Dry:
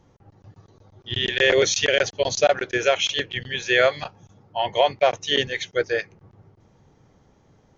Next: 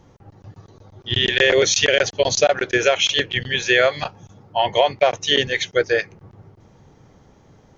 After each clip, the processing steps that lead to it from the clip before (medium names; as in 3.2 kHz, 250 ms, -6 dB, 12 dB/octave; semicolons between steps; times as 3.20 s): compression 2.5:1, threshold -20 dBFS, peak gain reduction 6 dB; trim +6.5 dB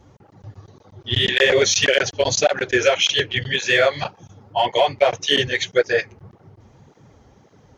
in parallel at -7.5 dB: hard clipper -10.5 dBFS, distortion -16 dB; on the sum: cancelling through-zero flanger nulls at 1.8 Hz, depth 6.9 ms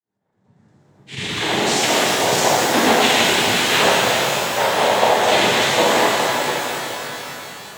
fade-in on the opening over 2.54 s; noise-vocoded speech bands 6; pitch-shifted reverb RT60 3.9 s, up +12 st, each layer -8 dB, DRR -7.5 dB; trim -4.5 dB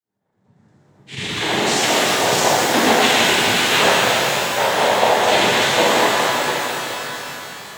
repeats whose band climbs or falls 138 ms, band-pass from 1.4 kHz, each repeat 0.7 oct, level -5 dB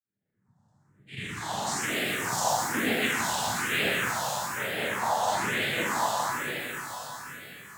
phase shifter stages 4, 1.1 Hz, lowest notch 360–1000 Hz; trim -8.5 dB